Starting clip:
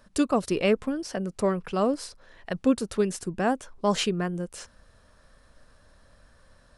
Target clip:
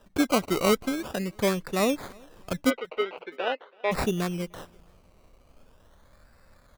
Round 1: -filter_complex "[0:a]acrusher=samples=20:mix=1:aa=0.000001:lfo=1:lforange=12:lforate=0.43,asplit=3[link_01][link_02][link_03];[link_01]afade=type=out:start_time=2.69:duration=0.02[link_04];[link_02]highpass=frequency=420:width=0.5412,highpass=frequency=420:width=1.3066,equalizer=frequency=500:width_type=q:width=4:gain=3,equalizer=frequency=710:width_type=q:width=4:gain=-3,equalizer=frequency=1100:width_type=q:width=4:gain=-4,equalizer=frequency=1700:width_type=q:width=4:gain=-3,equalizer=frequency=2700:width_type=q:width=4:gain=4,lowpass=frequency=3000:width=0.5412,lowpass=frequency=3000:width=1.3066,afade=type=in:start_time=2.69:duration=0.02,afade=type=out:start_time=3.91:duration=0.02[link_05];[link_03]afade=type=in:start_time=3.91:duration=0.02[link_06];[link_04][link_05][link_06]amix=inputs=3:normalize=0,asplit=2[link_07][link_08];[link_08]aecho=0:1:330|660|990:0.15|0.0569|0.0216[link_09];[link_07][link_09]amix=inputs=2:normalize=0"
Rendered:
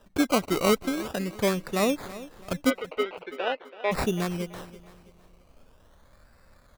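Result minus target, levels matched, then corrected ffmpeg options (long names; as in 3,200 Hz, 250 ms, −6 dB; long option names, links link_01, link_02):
echo-to-direct +11 dB
-filter_complex "[0:a]acrusher=samples=20:mix=1:aa=0.000001:lfo=1:lforange=12:lforate=0.43,asplit=3[link_01][link_02][link_03];[link_01]afade=type=out:start_time=2.69:duration=0.02[link_04];[link_02]highpass=frequency=420:width=0.5412,highpass=frequency=420:width=1.3066,equalizer=frequency=500:width_type=q:width=4:gain=3,equalizer=frequency=710:width_type=q:width=4:gain=-3,equalizer=frequency=1100:width_type=q:width=4:gain=-4,equalizer=frequency=1700:width_type=q:width=4:gain=-3,equalizer=frequency=2700:width_type=q:width=4:gain=4,lowpass=frequency=3000:width=0.5412,lowpass=frequency=3000:width=1.3066,afade=type=in:start_time=2.69:duration=0.02,afade=type=out:start_time=3.91:duration=0.02[link_05];[link_03]afade=type=in:start_time=3.91:duration=0.02[link_06];[link_04][link_05][link_06]amix=inputs=3:normalize=0,asplit=2[link_07][link_08];[link_08]aecho=0:1:330|660:0.0422|0.016[link_09];[link_07][link_09]amix=inputs=2:normalize=0"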